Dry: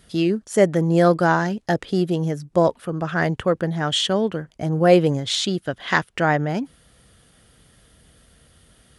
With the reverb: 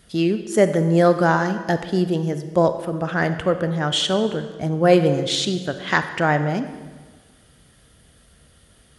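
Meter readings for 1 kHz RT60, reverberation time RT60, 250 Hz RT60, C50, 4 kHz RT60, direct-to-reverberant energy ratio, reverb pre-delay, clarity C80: 1.4 s, 1.4 s, 1.5 s, 10.5 dB, 1.2 s, 9.5 dB, 30 ms, 12.0 dB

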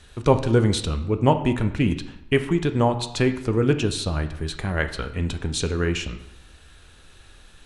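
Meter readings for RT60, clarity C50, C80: 0.85 s, 11.5 dB, 14.0 dB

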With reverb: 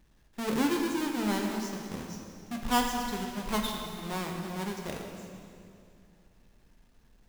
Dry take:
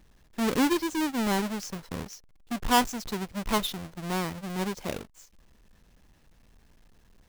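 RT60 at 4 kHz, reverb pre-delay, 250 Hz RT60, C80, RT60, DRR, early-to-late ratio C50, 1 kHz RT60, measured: 2.2 s, 7 ms, 3.0 s, 4.0 dB, 2.6 s, 1.0 dB, 3.0 dB, 2.4 s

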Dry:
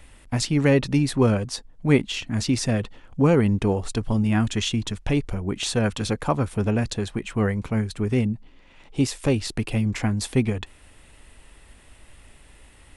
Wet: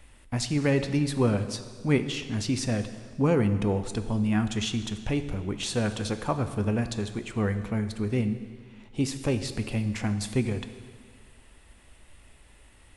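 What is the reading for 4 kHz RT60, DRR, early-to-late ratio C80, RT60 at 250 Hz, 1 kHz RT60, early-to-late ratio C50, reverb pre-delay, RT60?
1.7 s, 8.5 dB, 12.0 dB, 1.8 s, 1.8 s, 10.5 dB, 3 ms, 1.8 s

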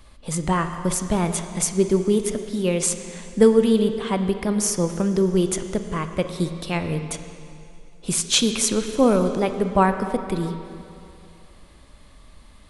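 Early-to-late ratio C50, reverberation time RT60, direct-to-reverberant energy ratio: 8.0 dB, 2.6 s, 7.5 dB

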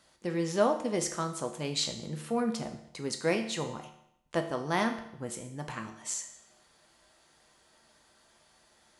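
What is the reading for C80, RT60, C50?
12.0 dB, 0.75 s, 9.5 dB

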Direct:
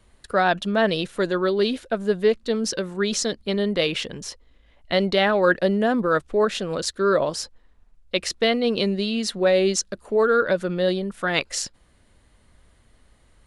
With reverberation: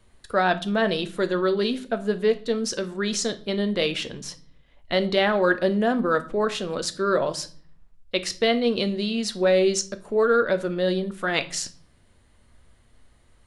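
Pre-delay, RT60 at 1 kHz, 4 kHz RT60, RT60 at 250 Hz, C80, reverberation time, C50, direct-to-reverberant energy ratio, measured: 8 ms, 0.45 s, 0.40 s, 0.80 s, 21.5 dB, 0.45 s, 17.0 dB, 9.5 dB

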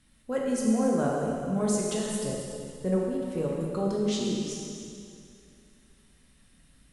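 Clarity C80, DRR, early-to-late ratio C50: 0.5 dB, −3.5 dB, −1.0 dB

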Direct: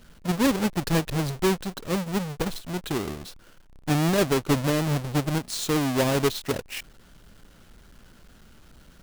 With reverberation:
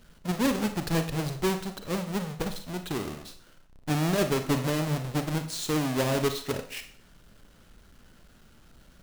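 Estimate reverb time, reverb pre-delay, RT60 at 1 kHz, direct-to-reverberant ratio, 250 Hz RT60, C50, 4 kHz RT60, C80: 0.55 s, 39 ms, 0.55 s, 7.5 dB, 0.55 s, 9.5 dB, 0.50 s, 14.5 dB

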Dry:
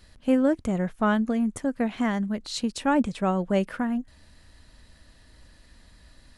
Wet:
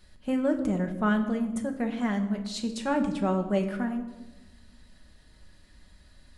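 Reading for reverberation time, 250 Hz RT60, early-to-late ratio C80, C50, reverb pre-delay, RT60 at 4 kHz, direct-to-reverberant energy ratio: 1.1 s, 1.5 s, 11.5 dB, 10.0 dB, 5 ms, 0.75 s, 4.0 dB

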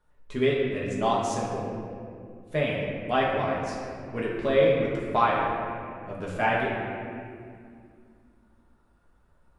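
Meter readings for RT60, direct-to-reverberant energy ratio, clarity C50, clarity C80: 2.3 s, −5.5 dB, 0.0 dB, 1.5 dB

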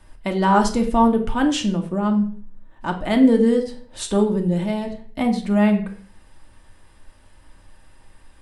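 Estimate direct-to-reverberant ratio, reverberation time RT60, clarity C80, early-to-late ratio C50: 2.5 dB, 0.45 s, 14.5 dB, 10.5 dB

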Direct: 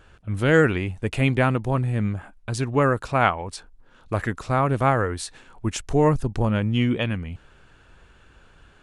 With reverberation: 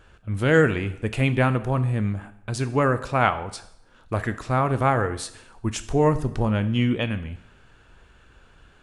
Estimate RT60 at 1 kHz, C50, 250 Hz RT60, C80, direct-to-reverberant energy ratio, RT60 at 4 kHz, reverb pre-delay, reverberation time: 0.75 s, 14.5 dB, 0.75 s, 17.0 dB, 11.0 dB, 0.70 s, 4 ms, 0.75 s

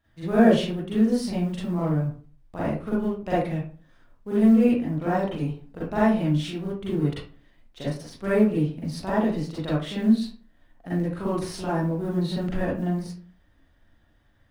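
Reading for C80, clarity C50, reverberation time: 6.5 dB, −0.5 dB, 0.40 s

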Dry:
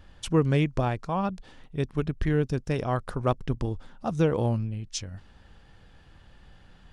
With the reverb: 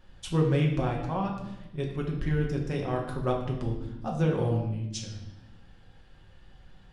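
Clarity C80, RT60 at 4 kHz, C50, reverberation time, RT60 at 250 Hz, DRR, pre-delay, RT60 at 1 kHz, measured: 8.0 dB, 0.85 s, 5.5 dB, 1.0 s, 1.7 s, −1.0 dB, 5 ms, 0.85 s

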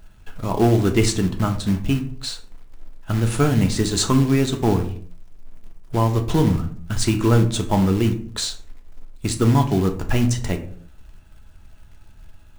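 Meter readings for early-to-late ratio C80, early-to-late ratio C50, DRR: 16.0 dB, 11.5 dB, 4.5 dB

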